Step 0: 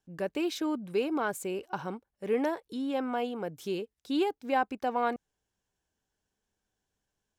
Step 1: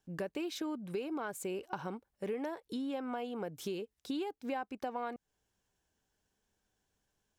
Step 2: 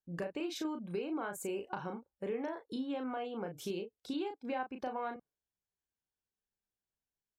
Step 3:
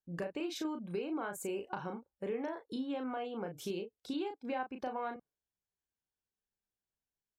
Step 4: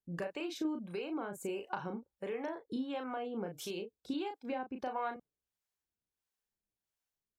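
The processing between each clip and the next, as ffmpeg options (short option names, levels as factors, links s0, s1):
-af "acompressor=threshold=0.0126:ratio=6,volume=1.33"
-filter_complex "[0:a]afftdn=nr=18:nf=-61,asplit=2[s0][s1];[s1]adelay=35,volume=0.501[s2];[s0][s2]amix=inputs=2:normalize=0,volume=0.891"
-af anull
-filter_complex "[0:a]acrossover=split=520[s0][s1];[s0]aeval=exprs='val(0)*(1-0.7/2+0.7/2*cos(2*PI*1.5*n/s))':c=same[s2];[s1]aeval=exprs='val(0)*(1-0.7/2-0.7/2*cos(2*PI*1.5*n/s))':c=same[s3];[s2][s3]amix=inputs=2:normalize=0,volume=1.5"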